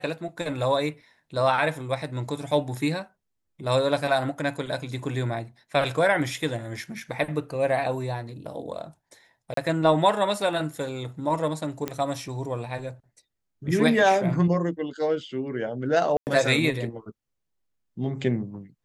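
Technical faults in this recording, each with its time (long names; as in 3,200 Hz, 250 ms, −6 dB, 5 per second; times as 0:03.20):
0:09.54–0:09.57: drop-out 33 ms
0:11.88: click −14 dBFS
0:16.17–0:16.27: drop-out 99 ms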